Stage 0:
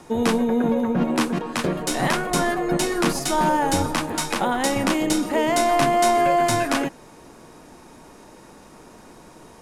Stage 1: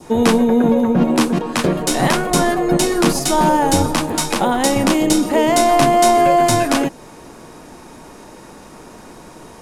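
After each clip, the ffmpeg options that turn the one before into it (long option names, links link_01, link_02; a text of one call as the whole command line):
ffmpeg -i in.wav -af "adynamicequalizer=threshold=0.0141:dfrequency=1700:dqfactor=0.87:tfrequency=1700:tqfactor=0.87:attack=5:release=100:ratio=0.375:range=2.5:mode=cutabove:tftype=bell,volume=7dB" out.wav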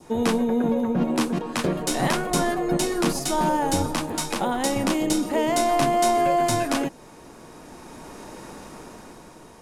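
ffmpeg -i in.wav -af "dynaudnorm=framelen=200:gausssize=11:maxgain=9dB,volume=-8.5dB" out.wav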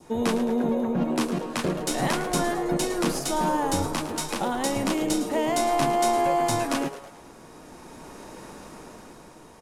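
ffmpeg -i in.wav -filter_complex "[0:a]asplit=6[link_01][link_02][link_03][link_04][link_05][link_06];[link_02]adelay=108,afreqshift=140,volume=-13dB[link_07];[link_03]adelay=216,afreqshift=280,volume=-19.4dB[link_08];[link_04]adelay=324,afreqshift=420,volume=-25.8dB[link_09];[link_05]adelay=432,afreqshift=560,volume=-32.1dB[link_10];[link_06]adelay=540,afreqshift=700,volume=-38.5dB[link_11];[link_01][link_07][link_08][link_09][link_10][link_11]amix=inputs=6:normalize=0,volume=-2.5dB" out.wav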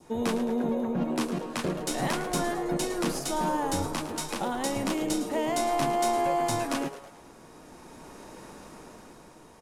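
ffmpeg -i in.wav -af "aeval=exprs='0.188*(abs(mod(val(0)/0.188+3,4)-2)-1)':channel_layout=same,volume=-3.5dB" out.wav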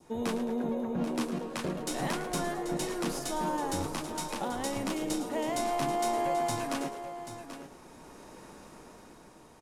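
ffmpeg -i in.wav -af "aecho=1:1:785:0.282,volume=-4dB" out.wav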